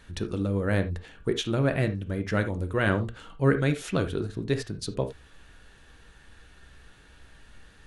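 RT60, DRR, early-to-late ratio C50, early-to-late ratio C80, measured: no single decay rate, 7.5 dB, 12.0 dB, 19.0 dB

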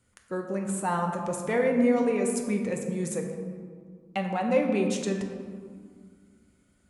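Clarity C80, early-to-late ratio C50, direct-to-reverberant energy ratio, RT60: 6.0 dB, 5.0 dB, 2.0 dB, 2.0 s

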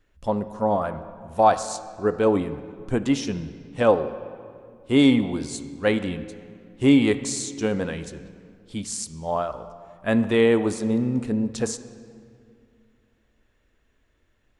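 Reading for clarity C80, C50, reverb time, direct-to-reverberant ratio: 13.5 dB, 12.0 dB, 2.3 s, 11.0 dB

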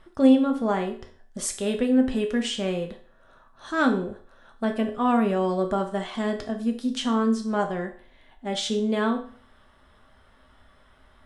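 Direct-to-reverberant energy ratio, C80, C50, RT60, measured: 3.5 dB, 15.0 dB, 10.5 dB, 0.45 s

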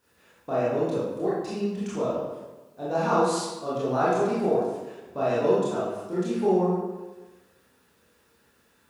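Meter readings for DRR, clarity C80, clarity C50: -9.5 dB, 2.0 dB, -1.5 dB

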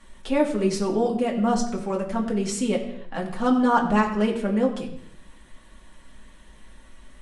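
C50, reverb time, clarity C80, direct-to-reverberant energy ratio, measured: 9.0 dB, no single decay rate, 10.5 dB, -3.0 dB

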